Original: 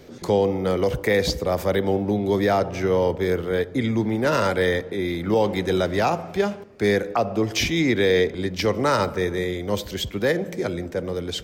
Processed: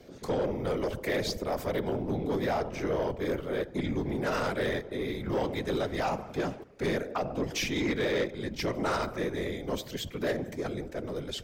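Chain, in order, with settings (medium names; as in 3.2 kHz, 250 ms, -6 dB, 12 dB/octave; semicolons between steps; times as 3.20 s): whisper effect; saturation -15.5 dBFS, distortion -15 dB; trim -7 dB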